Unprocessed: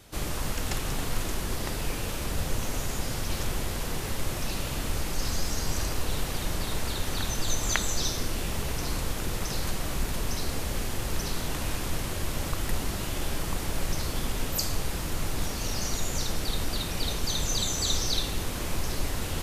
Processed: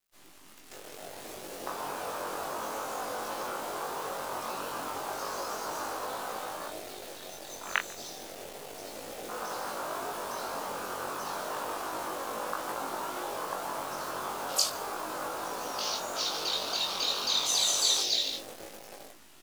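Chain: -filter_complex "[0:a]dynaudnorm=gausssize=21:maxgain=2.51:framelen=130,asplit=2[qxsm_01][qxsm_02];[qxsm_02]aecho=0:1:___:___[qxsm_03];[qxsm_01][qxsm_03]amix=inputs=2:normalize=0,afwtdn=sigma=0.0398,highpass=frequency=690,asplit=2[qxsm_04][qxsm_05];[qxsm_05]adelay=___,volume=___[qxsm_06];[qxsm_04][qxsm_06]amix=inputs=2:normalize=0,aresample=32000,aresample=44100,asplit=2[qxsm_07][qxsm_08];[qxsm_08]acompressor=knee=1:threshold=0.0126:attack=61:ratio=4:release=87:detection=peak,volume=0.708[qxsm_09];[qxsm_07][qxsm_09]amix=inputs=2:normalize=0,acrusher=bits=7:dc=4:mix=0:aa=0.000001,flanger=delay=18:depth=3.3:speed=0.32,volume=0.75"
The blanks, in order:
145, 0.355, 22, 0.562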